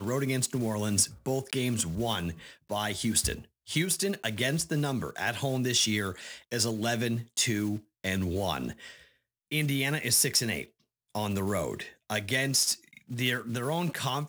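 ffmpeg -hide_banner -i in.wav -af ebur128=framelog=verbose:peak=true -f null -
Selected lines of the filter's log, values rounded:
Integrated loudness:
  I:         -29.1 LUFS
  Threshold: -39.5 LUFS
Loudness range:
  LRA:         2.5 LU
  Threshold: -49.6 LUFS
  LRA low:   -31.0 LUFS
  LRA high:  -28.6 LUFS
True peak:
  Peak:      -10.7 dBFS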